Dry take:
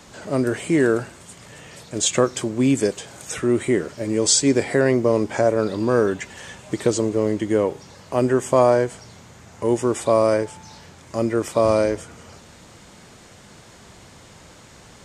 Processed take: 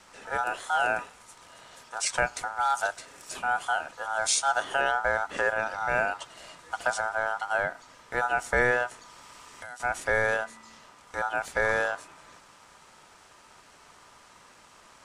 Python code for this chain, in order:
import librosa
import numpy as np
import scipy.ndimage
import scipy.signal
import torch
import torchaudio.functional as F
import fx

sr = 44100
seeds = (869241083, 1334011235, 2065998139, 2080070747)

y = x * np.sin(2.0 * np.pi * 1100.0 * np.arange(len(x)) / sr)
y = fx.band_squash(y, sr, depth_pct=100, at=(8.91, 9.8))
y = y * librosa.db_to_amplitude(-5.5)